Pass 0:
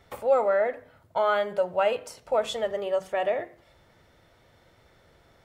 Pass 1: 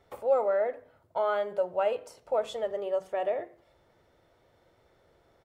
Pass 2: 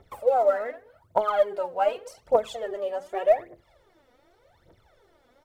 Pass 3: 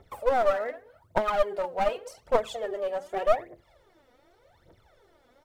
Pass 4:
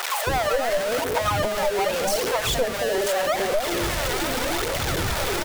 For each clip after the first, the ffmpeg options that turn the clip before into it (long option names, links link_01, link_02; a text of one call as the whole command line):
ffmpeg -i in.wav -af "firequalizer=gain_entry='entry(220,0);entry(360,6);entry(1800,-1)':delay=0.05:min_phase=1,volume=-8dB" out.wav
ffmpeg -i in.wav -af "aphaser=in_gain=1:out_gain=1:delay=4.2:decay=0.77:speed=0.85:type=triangular" out.wav
ffmpeg -i in.wav -af "aeval=exprs='clip(val(0),-1,0.0501)':channel_layout=same" out.wav
ffmpeg -i in.wav -filter_complex "[0:a]aeval=exprs='val(0)+0.5*0.0841*sgn(val(0))':channel_layout=same,acrossover=split=680[link_01][link_02];[link_01]adelay=270[link_03];[link_03][link_02]amix=inputs=2:normalize=0,acompressor=threshold=-26dB:ratio=2.5,volume=5dB" out.wav